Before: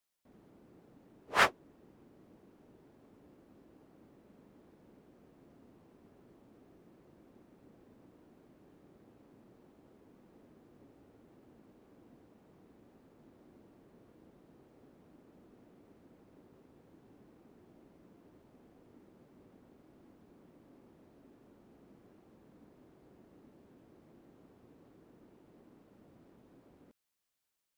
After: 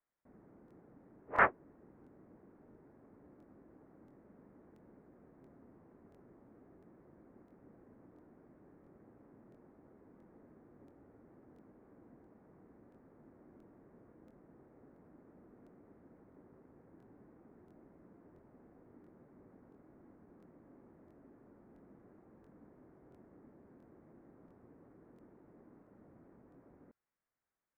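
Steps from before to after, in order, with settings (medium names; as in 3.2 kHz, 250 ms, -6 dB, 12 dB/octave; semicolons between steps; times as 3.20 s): steep low-pass 2 kHz 36 dB/octave; crackling interface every 0.68 s, samples 1024, repeat, from 0.66 s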